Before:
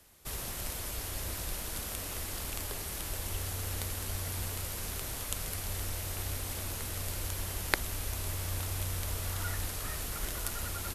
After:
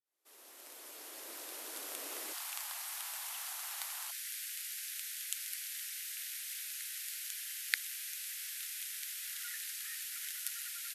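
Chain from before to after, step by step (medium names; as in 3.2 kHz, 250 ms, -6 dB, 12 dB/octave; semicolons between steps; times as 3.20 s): fade-in on the opening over 2.39 s; steep high-pass 280 Hz 48 dB/octave, from 2.32 s 750 Hz, from 4.10 s 1.6 kHz; trim -2 dB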